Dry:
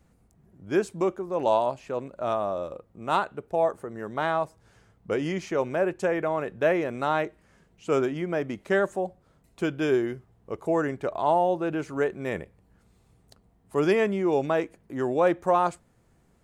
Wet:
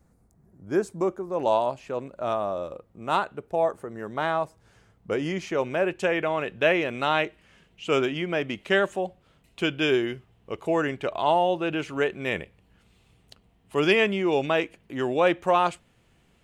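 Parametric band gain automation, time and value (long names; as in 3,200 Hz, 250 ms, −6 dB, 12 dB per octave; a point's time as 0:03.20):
parametric band 2,900 Hz 0.95 octaves
0:00.98 −8.5 dB
0:01.56 +2.5 dB
0:05.31 +2.5 dB
0:06.09 +14 dB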